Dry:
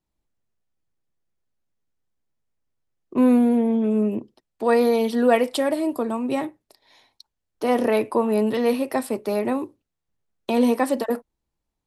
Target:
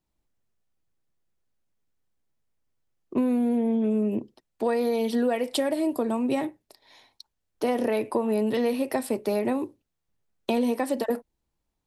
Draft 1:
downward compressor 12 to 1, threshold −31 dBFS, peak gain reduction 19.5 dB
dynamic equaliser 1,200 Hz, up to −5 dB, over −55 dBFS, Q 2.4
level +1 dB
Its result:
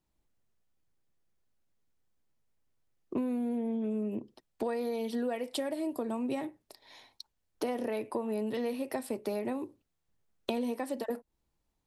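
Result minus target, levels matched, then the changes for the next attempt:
downward compressor: peak gain reduction +8.5 dB
change: downward compressor 12 to 1, threshold −21.5 dBFS, peak gain reduction 10.5 dB

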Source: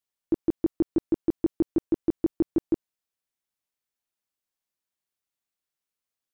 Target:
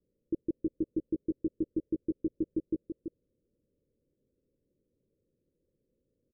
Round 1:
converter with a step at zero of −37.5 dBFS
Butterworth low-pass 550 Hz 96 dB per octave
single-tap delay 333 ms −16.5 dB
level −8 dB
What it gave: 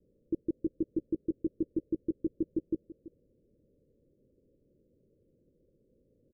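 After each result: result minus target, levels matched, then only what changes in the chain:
converter with a step at zero: distortion +11 dB; echo-to-direct −9 dB
change: converter with a step at zero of −48.5 dBFS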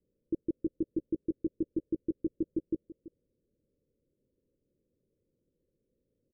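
echo-to-direct −9 dB
change: single-tap delay 333 ms −7.5 dB

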